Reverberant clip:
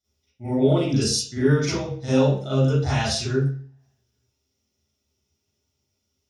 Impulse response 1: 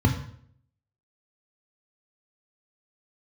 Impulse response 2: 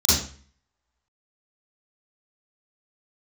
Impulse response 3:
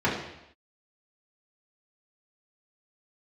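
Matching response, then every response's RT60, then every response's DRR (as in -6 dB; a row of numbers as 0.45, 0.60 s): 2; 0.60 s, 0.45 s, not exponential; 3.5, -12.5, -7.5 dB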